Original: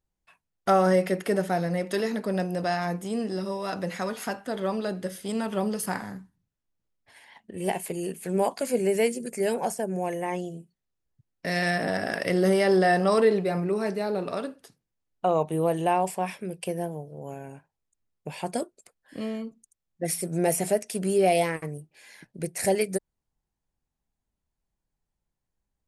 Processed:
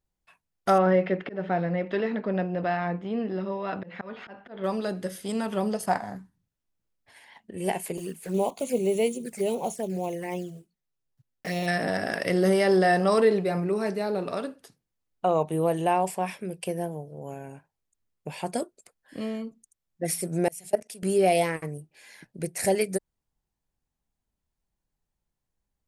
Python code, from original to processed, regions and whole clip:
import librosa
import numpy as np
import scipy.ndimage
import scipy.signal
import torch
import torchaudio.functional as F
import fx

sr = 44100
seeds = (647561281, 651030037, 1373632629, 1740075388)

y = fx.chain(x, sr, fx.lowpass(hz=3200.0, slope=24),
    fx.auto_swell(attack_ms=193.0), at=(0.78, 4.64))
y = fx.chain(y, sr, fx.lowpass(hz=10000.0, slope=12),
    fx.transient(attack_db=-1, sustain_db=-7),
    fx.peak_eq(hz=690.0, db=13.0, octaves=0.56), at=(5.73, 6.16))
y = fx.chain(y, sr, fx.block_float(bits=5),
    fx.env_flanger(rest_ms=8.2, full_db=-25.0), at=(7.97, 11.68))
y = fx.chain(y, sr, fx.level_steps(step_db=20),
    fx.band_widen(depth_pct=100), at=(20.48, 21.03))